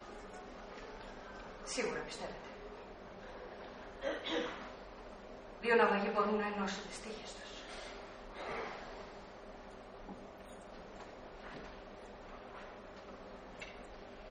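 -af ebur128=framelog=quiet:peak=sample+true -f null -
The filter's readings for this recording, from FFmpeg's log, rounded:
Integrated loudness:
  I:         -41.1 LUFS
  Threshold: -51.9 LUFS
Loudness range:
  LRA:        15.0 LU
  Threshold: -61.2 LUFS
  LRA low:   -51.3 LUFS
  LRA high:  -36.4 LUFS
Sample peak:
  Peak:      -17.8 dBFS
True peak:
  Peak:      -17.8 dBFS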